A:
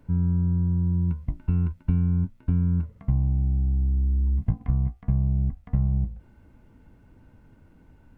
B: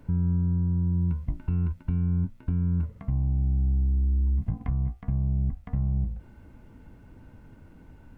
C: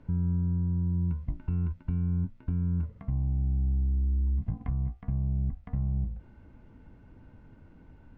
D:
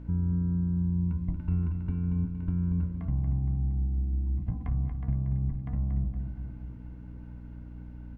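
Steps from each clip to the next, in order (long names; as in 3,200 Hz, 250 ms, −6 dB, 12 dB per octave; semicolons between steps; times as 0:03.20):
brickwall limiter −23 dBFS, peak gain reduction 11.5 dB; level +4 dB
high-frequency loss of the air 120 metres; level −3 dB
repeating echo 233 ms, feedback 52%, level −7.5 dB; mains hum 60 Hz, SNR 12 dB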